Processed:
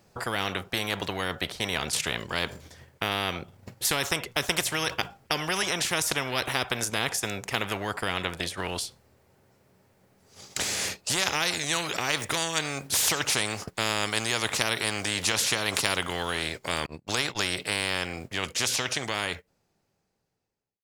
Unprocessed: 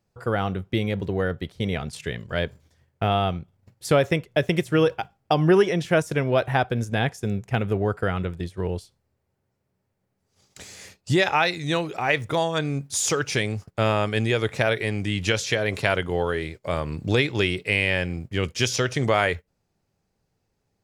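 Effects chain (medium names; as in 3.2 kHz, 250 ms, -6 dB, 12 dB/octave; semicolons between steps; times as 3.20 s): fade out at the end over 4.87 s; 16.86–17.50 s: gate -28 dBFS, range -42 dB; bass shelf 150 Hz -9 dB; spectrum-flattening compressor 4:1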